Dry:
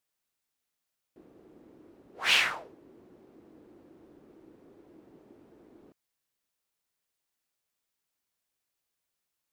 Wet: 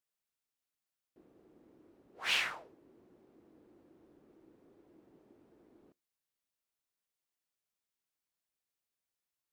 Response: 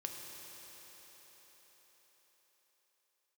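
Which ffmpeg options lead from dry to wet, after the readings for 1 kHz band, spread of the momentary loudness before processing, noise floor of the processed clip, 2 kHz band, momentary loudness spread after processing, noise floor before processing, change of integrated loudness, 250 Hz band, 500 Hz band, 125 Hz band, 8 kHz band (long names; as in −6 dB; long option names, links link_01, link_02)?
−7.5 dB, 13 LU, below −85 dBFS, −7.5 dB, 13 LU, −85 dBFS, −7.5 dB, −7.5 dB, −7.5 dB, −7.5 dB, −7.5 dB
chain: -filter_complex "[0:a]asplit=2[link_01][link_02];[1:a]atrim=start_sample=2205,atrim=end_sample=3528[link_03];[link_02][link_03]afir=irnorm=-1:irlink=0,volume=-17dB[link_04];[link_01][link_04]amix=inputs=2:normalize=0,volume=-8.5dB"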